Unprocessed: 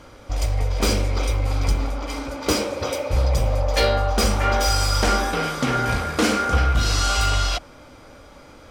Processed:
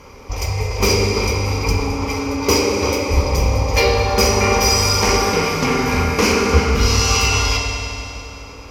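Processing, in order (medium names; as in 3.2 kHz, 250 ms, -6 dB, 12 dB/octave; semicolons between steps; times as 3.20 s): rippled EQ curve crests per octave 0.81, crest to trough 11 dB; reverberation RT60 3.1 s, pre-delay 4 ms, DRR 0 dB; trim +2 dB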